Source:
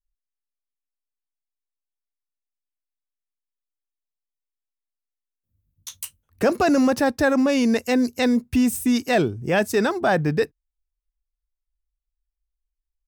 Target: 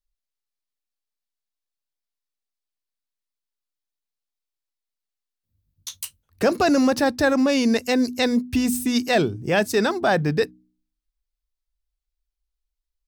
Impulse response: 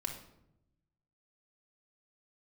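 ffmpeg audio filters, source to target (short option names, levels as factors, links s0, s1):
-af "equalizer=f=4300:w=1.6:g=5.5,bandreject=f=61.89:t=h:w=4,bandreject=f=123.78:t=h:w=4,bandreject=f=185.67:t=h:w=4,bandreject=f=247.56:t=h:w=4,bandreject=f=309.45:t=h:w=4"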